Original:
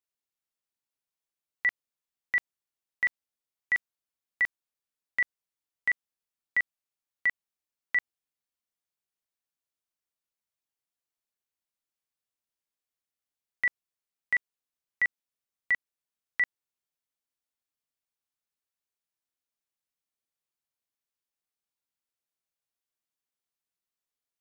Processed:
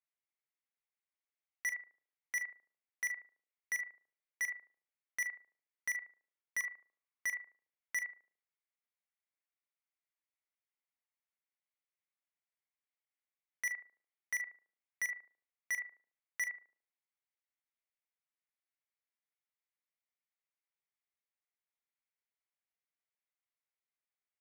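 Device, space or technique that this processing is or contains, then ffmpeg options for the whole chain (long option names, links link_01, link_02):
megaphone: -filter_complex "[0:a]asettb=1/sr,asplit=3[link_01][link_02][link_03];[link_01]atrim=end=6.584[link_04];[link_02]atrim=start=6.58:end=7.27,asetpts=PTS-STARTPTS,afade=type=in:duration=0.004:curve=qsin,afade=type=out:start_time=0.686:duration=0.004:curve=qsin,equalizer=frequency=1100:width_type=o:width=0.23:gain=10[link_05];[link_03]atrim=start=7.266[link_06];[link_04][link_05]acrossfade=duration=0.004:curve1=hsin:curve2=qsin[link_07];[link_07][link_06]acrossfade=duration=0.004:curve1=qsin:curve2=hsin,highpass=550,lowpass=2700,equalizer=frequency=2100:width_type=o:width=0.41:gain=9,asplit=2[link_08][link_09];[link_09]adelay=73,lowpass=frequency=820:poles=1,volume=-9dB,asplit=2[link_10][link_11];[link_11]adelay=73,lowpass=frequency=820:poles=1,volume=0.5,asplit=2[link_12][link_13];[link_13]adelay=73,lowpass=frequency=820:poles=1,volume=0.5,asplit=2[link_14][link_15];[link_15]adelay=73,lowpass=frequency=820:poles=1,volume=0.5,asplit=2[link_16][link_17];[link_17]adelay=73,lowpass=frequency=820:poles=1,volume=0.5,asplit=2[link_18][link_19];[link_19]adelay=73,lowpass=frequency=820:poles=1,volume=0.5[link_20];[link_08][link_10][link_12][link_14][link_16][link_18][link_20]amix=inputs=7:normalize=0,asoftclip=type=hard:threshold=-27dB,asplit=2[link_21][link_22];[link_22]adelay=43,volume=-13dB[link_23];[link_21][link_23]amix=inputs=2:normalize=0,volume=-5.5dB"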